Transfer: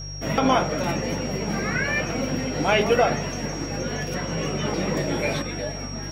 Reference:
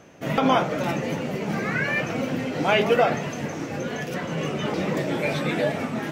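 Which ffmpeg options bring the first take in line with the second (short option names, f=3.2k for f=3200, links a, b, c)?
-af "bandreject=f=49.2:t=h:w=4,bandreject=f=98.4:t=h:w=4,bandreject=f=147.6:t=h:w=4,bandreject=f=5.6k:w=30,asetnsamples=n=441:p=0,asendcmd='5.42 volume volume 7.5dB',volume=0dB"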